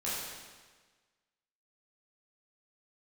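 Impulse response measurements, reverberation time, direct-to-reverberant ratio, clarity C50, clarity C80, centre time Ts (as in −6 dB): 1.4 s, −9.5 dB, −1.5 dB, 0.5 dB, 103 ms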